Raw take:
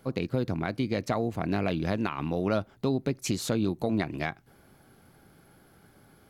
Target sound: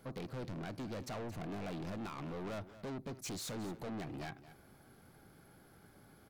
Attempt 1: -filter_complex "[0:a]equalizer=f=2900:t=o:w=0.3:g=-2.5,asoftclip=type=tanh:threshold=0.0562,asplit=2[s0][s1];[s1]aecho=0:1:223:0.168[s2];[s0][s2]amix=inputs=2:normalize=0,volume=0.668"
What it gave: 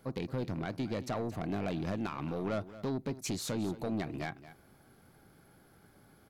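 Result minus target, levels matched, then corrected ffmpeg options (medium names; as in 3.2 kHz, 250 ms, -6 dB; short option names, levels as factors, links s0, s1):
saturation: distortion -7 dB
-filter_complex "[0:a]equalizer=f=2900:t=o:w=0.3:g=-2.5,asoftclip=type=tanh:threshold=0.015,asplit=2[s0][s1];[s1]aecho=0:1:223:0.168[s2];[s0][s2]amix=inputs=2:normalize=0,volume=0.668"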